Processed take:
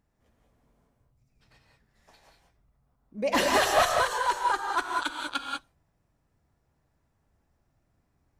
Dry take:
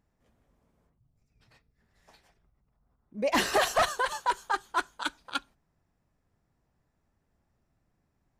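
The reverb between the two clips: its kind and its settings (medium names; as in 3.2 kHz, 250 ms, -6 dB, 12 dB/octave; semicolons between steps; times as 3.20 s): gated-style reverb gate 220 ms rising, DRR 1 dB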